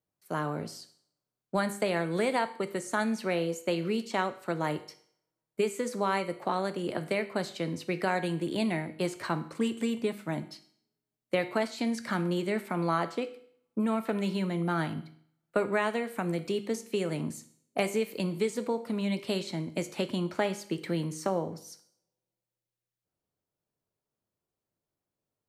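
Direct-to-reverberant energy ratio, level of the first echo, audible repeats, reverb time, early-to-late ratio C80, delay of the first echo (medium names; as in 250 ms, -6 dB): 10.0 dB, no echo, no echo, 0.60 s, 18.0 dB, no echo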